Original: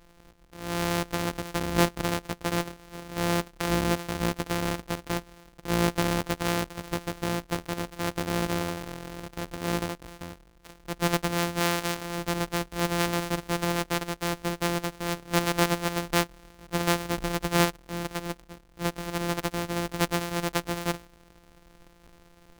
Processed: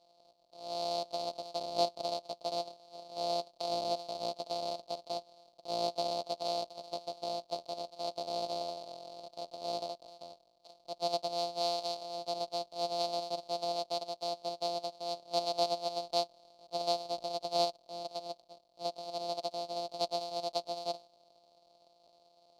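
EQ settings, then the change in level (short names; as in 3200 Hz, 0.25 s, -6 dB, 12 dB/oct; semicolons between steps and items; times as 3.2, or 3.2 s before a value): double band-pass 1700 Hz, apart 2.7 oct; +3.5 dB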